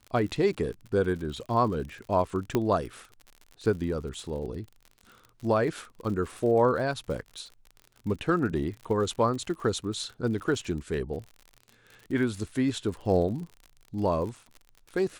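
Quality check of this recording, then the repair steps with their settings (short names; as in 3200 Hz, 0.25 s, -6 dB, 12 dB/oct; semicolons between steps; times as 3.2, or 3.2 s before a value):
crackle 53/s -37 dBFS
2.55 pop -12 dBFS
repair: de-click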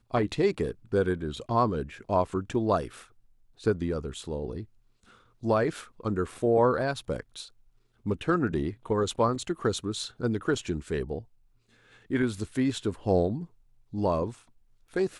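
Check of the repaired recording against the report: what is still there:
2.55 pop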